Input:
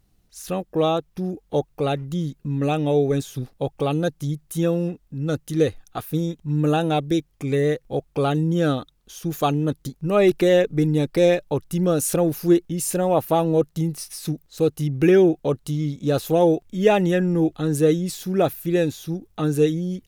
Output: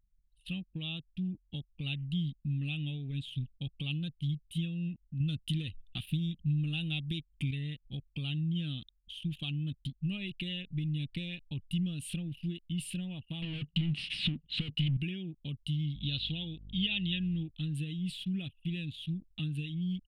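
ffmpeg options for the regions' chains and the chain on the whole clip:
ffmpeg -i in.wav -filter_complex "[0:a]asettb=1/sr,asplit=3[link_01][link_02][link_03];[link_01]atrim=end=5.204[link_04];[link_02]atrim=start=5.2:end=7.51,asetpts=PTS-STARTPTS,afade=type=in:duration=0.004:curve=qsin,afade=type=out:start_time=2.306:duration=0.004:curve=qsin,highshelf=frequency=5200:gain=4,acontrast=72[link_05];[link_03]atrim=start=7.506[link_06];[link_04][link_05]acrossfade=duration=0.004:curve1=hsin:curve2=qsin[link_07];[link_07][link_06]acrossfade=duration=0.004:curve1=qsin:curve2=hsin,asettb=1/sr,asplit=3[link_08][link_09][link_10];[link_08]atrim=end=13.424[link_11];[link_09]atrim=start=13.42:end=14.97,asetpts=PTS-STARTPTS,afade=type=in:duration=0.004:curve=qsin,afade=type=out:start_time=1.546:duration=0.004:curve=qsin,lowpass=4600,asplit=2[link_12][link_13];[link_13]highpass=frequency=720:poles=1,volume=36dB,asoftclip=type=tanh:threshold=-8.5dB[link_14];[link_12][link_14]amix=inputs=2:normalize=0,lowpass=frequency=1200:poles=1,volume=-6dB[link_15];[link_10]atrim=start=14.966[link_16];[link_11][link_15]acrossfade=duration=0.004:curve1=hsin:curve2=qsin[link_17];[link_17][link_16]acrossfade=duration=0.004:curve1=qsin:curve2=hsin,asettb=1/sr,asplit=3[link_18][link_19][link_20];[link_18]atrim=end=15.954[link_21];[link_19]atrim=start=15.95:end=17.43,asetpts=PTS-STARTPTS,afade=type=in:duration=0.004:curve=qsin,afade=type=out:start_time=1.476:duration=0.004:curve=qsin,lowpass=frequency=3900:width_type=q:width=4.2,aeval=exprs='val(0)+0.01*(sin(2*PI*50*n/s)+sin(2*PI*2*50*n/s)/2+sin(2*PI*3*50*n/s)/3+sin(2*PI*4*50*n/s)/4+sin(2*PI*5*50*n/s)/5)':channel_layout=same[link_22];[link_20]atrim=start=17.426[link_23];[link_21][link_22]acrossfade=duration=0.004:curve1=hsin:curve2=qsin[link_24];[link_24][link_23]acrossfade=duration=0.004:curve1=qsin:curve2=hsin,acompressor=threshold=-22dB:ratio=6,firequalizer=gain_entry='entry(180,0);entry(440,-28);entry(1300,-25);entry(2900,12);entry(6100,-27);entry(8800,-9);entry(15000,-28)':delay=0.05:min_phase=1,anlmdn=0.0398,volume=-5dB" out.wav

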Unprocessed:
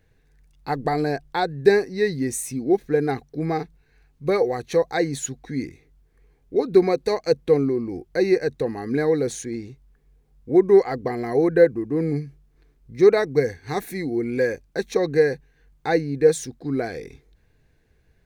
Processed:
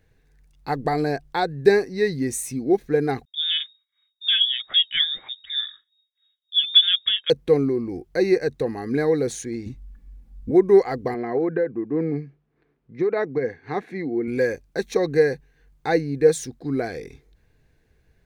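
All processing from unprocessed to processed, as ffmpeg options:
ffmpeg -i in.wav -filter_complex "[0:a]asettb=1/sr,asplit=3[link_01][link_02][link_03];[link_01]atrim=end=3.254[link_04];[link_02]atrim=start=3.25:end=7.3,asetpts=PTS-STARTPTS,afade=type=in:duration=0.004:curve=qsin,afade=type=out:start_time=4.046:duration=0.004:curve=qsin,agate=range=-33dB:threshold=-48dB:ratio=3:release=100:detection=peak,lowpass=frequency=3200:width_type=q:width=0.5098,lowpass=frequency=3200:width_type=q:width=0.6013,lowpass=frequency=3200:width_type=q:width=0.9,lowpass=frequency=3200:width_type=q:width=2.563,afreqshift=-3800[link_05];[link_03]atrim=start=7.296[link_06];[link_04][link_05]acrossfade=duration=0.004:curve1=hsin:curve2=qsin[link_07];[link_07][link_06]acrossfade=duration=0.004:curve1=qsin:curve2=hsin,asettb=1/sr,asplit=3[link_08][link_09][link_10];[link_08]atrim=end=9.664[link_11];[link_09]atrim=start=9.66:end=10.51,asetpts=PTS-STARTPTS,afade=type=in:duration=0.004:curve=qsin,afade=type=out:start_time=0.846:duration=0.004:curve=qsin,lowshelf=frequency=260:width_type=q:width=1.5:gain=10.5,aecho=1:1:3.5:0.75,atrim=end_sample=37485[link_12];[link_10]atrim=start=10.506[link_13];[link_11][link_12]acrossfade=duration=0.004:curve1=hsin:curve2=qsin[link_14];[link_14][link_13]acrossfade=duration=0.004:curve1=qsin:curve2=hsin,asettb=1/sr,asplit=3[link_15][link_16][link_17];[link_15]atrim=end=11.144[link_18];[link_16]atrim=start=11.14:end=14.28,asetpts=PTS-STARTPTS,afade=type=in:duration=0.004:curve=qsin,afade=type=out:start_time=3.136:duration=0.004:curve=qsin,acompressor=threshold=-17dB:ratio=12:attack=3.2:release=140:knee=1:detection=peak,highpass=160,lowpass=2400[link_19];[link_17]atrim=start=14.276[link_20];[link_18][link_19]acrossfade=duration=0.004:curve1=hsin:curve2=qsin[link_21];[link_21][link_20]acrossfade=duration=0.004:curve1=qsin:curve2=hsin" out.wav

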